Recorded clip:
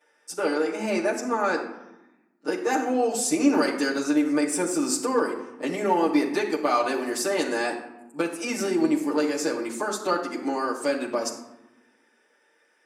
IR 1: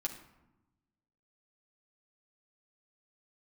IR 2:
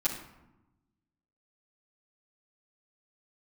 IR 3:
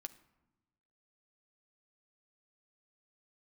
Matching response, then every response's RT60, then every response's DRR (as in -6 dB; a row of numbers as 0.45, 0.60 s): 2; 1.0, 0.95, 1.0 s; -1.0, -10.0, 8.0 dB